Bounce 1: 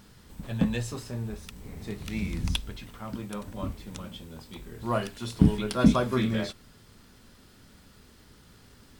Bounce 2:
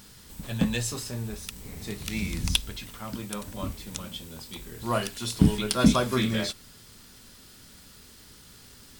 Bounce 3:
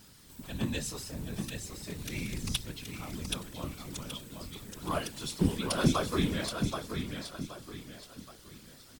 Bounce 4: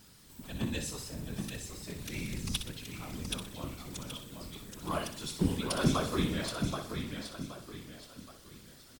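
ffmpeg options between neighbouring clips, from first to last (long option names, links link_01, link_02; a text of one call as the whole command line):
ffmpeg -i in.wav -af "highshelf=frequency=2900:gain=11.5" out.wav
ffmpeg -i in.wav -af "aecho=1:1:775|1550|2325|3100:0.501|0.185|0.0686|0.0254,afftfilt=real='hypot(re,im)*cos(2*PI*random(0))':imag='hypot(re,im)*sin(2*PI*random(1))':win_size=512:overlap=0.75" out.wav
ffmpeg -i in.wav -af "aecho=1:1:62|124|186|248|310:0.355|0.149|0.0626|0.0263|0.011,volume=-2dB" out.wav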